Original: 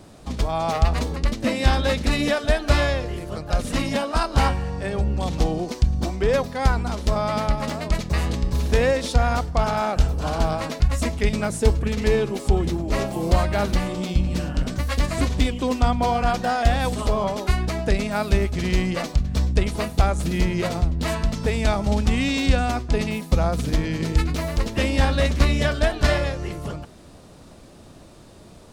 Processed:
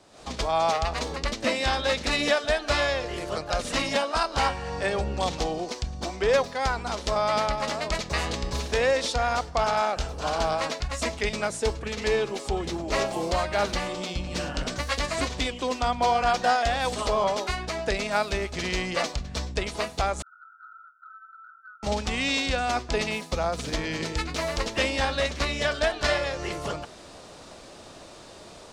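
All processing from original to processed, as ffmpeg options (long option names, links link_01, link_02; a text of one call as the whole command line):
ffmpeg -i in.wav -filter_complex "[0:a]asettb=1/sr,asplit=3[link_01][link_02][link_03];[link_01]atrim=end=20.224[link_04];[link_02]atrim=start=20.22:end=21.83,asetpts=PTS-STARTPTS,afade=type=in:duration=0.004:curve=qsin,afade=type=out:start_time=1.606:duration=0.004:curve=qsin,asuperpass=centerf=1400:order=20:qfactor=5.4,acompressor=threshold=-50dB:ratio=5:attack=3.2:release=140:knee=1:detection=peak[link_05];[link_03]atrim=start=21.826[link_06];[link_04][link_05]acrossfade=duration=0.004:curve1=hsin:curve2=qsin[link_07];[link_07][link_06]acrossfade=duration=0.004:curve1=qsin:curve2=hsin,highshelf=frequency=6800:gain=9,dynaudnorm=framelen=110:gausssize=3:maxgain=11.5dB,acrossover=split=390 7600:gain=0.251 1 0.0794[link_08][link_09][link_10];[link_08][link_09][link_10]amix=inputs=3:normalize=0,volume=-6.5dB" out.wav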